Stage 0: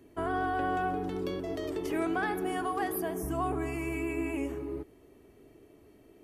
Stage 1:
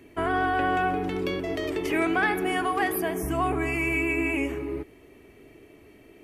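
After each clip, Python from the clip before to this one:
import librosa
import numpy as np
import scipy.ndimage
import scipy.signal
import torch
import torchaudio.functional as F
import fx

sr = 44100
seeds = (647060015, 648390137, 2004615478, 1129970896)

y = fx.peak_eq(x, sr, hz=2300.0, db=10.0, octaves=0.87)
y = F.gain(torch.from_numpy(y), 5.0).numpy()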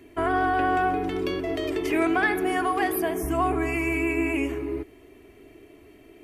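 y = x + 0.38 * np.pad(x, (int(2.9 * sr / 1000.0), 0))[:len(x)]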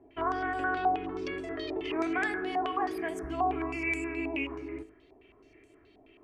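y = fx.comb_fb(x, sr, f0_hz=54.0, decay_s=0.37, harmonics='all', damping=0.0, mix_pct=60)
y = fx.filter_held_lowpass(y, sr, hz=9.4, low_hz=800.0, high_hz=7800.0)
y = F.gain(torch.from_numpy(y), -5.5).numpy()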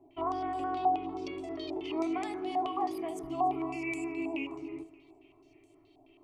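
y = fx.fixed_phaser(x, sr, hz=320.0, stages=8)
y = fx.echo_feedback(y, sr, ms=288, feedback_pct=50, wet_db=-21)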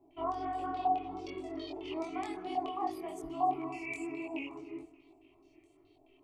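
y = fx.chorus_voices(x, sr, voices=4, hz=1.5, base_ms=23, depth_ms=3.0, mix_pct=45)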